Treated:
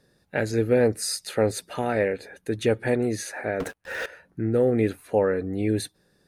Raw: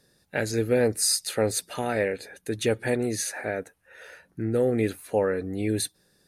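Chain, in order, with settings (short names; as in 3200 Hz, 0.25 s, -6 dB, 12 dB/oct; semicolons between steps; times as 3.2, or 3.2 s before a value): high shelf 3500 Hz -10 dB; 3.6–4.06 sample leveller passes 5; gain +2.5 dB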